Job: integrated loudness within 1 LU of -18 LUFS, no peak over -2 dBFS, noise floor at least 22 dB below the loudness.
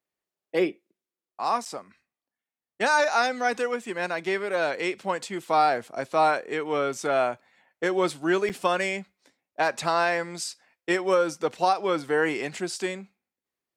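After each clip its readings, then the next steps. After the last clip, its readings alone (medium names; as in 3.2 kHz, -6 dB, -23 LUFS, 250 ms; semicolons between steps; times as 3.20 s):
dropouts 2; longest dropout 7.8 ms; loudness -26.0 LUFS; peak level -10.5 dBFS; loudness target -18.0 LUFS
-> interpolate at 1.65/8.49 s, 7.8 ms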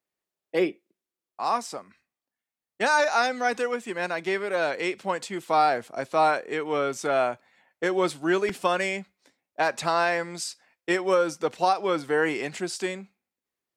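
dropouts 0; loudness -26.0 LUFS; peak level -10.5 dBFS; loudness target -18.0 LUFS
-> trim +8 dB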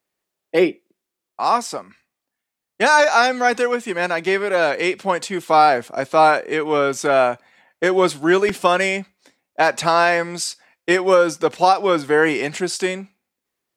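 loudness -18.0 LUFS; peak level -2.5 dBFS; noise floor -83 dBFS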